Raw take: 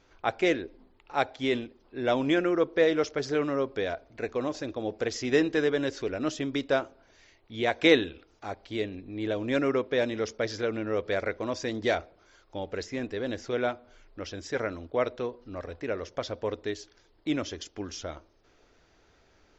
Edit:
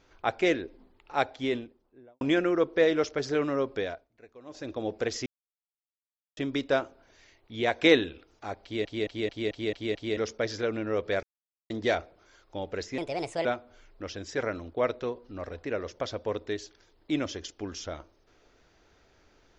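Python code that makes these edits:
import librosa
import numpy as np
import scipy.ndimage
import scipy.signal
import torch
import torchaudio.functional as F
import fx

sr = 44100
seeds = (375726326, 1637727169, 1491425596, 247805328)

y = fx.studio_fade_out(x, sr, start_s=1.24, length_s=0.97)
y = fx.edit(y, sr, fx.fade_down_up(start_s=3.78, length_s=0.97, db=-20.0, fade_s=0.3),
    fx.silence(start_s=5.26, length_s=1.11),
    fx.stutter_over(start_s=8.63, slice_s=0.22, count=7),
    fx.silence(start_s=11.23, length_s=0.47),
    fx.speed_span(start_s=12.98, length_s=0.64, speed=1.36), tone=tone)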